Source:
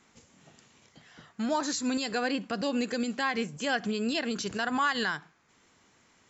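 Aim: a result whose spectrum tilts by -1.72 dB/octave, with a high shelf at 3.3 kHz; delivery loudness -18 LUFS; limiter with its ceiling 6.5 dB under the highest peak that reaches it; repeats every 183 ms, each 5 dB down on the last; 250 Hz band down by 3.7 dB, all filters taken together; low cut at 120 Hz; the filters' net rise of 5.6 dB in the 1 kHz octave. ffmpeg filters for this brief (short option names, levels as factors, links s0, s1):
-af "highpass=120,equalizer=f=250:t=o:g=-4,equalizer=f=1000:t=o:g=6.5,highshelf=f=3300:g=7,alimiter=limit=0.133:level=0:latency=1,aecho=1:1:183|366|549|732|915|1098|1281:0.562|0.315|0.176|0.0988|0.0553|0.031|0.0173,volume=3.16"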